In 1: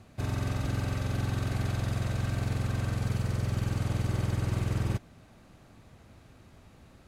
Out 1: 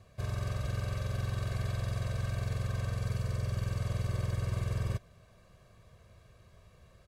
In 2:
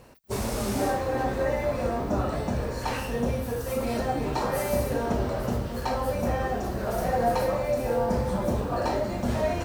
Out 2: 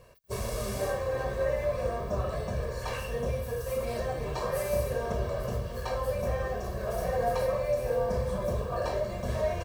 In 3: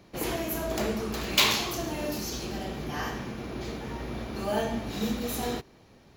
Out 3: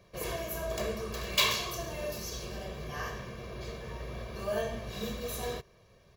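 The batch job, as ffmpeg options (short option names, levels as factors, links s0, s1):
-af "aecho=1:1:1.8:0.8,volume=0.473"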